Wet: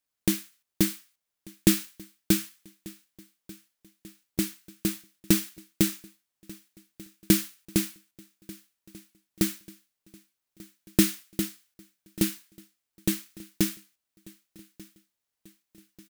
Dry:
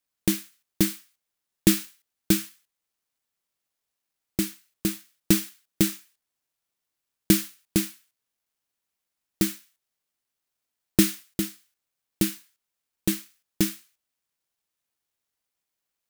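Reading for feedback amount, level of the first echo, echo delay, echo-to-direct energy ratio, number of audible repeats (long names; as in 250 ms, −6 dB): 54%, −22.5 dB, 1,190 ms, −21.0 dB, 3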